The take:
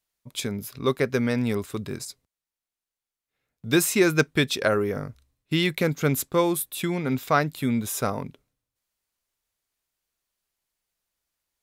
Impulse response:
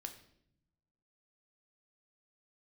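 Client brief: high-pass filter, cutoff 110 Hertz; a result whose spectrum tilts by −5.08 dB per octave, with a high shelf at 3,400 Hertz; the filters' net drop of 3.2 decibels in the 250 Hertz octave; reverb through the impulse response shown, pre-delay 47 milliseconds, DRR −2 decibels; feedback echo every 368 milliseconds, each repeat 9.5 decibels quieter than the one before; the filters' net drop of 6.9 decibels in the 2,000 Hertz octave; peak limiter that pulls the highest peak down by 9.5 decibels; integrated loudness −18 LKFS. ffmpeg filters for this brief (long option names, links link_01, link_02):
-filter_complex "[0:a]highpass=110,equalizer=frequency=250:width_type=o:gain=-4,equalizer=frequency=2000:width_type=o:gain=-8,highshelf=frequency=3400:gain=-4.5,alimiter=limit=-17.5dB:level=0:latency=1,aecho=1:1:368|736|1104|1472:0.335|0.111|0.0365|0.012,asplit=2[link_01][link_02];[1:a]atrim=start_sample=2205,adelay=47[link_03];[link_02][link_03]afir=irnorm=-1:irlink=0,volume=6dB[link_04];[link_01][link_04]amix=inputs=2:normalize=0,volume=7.5dB"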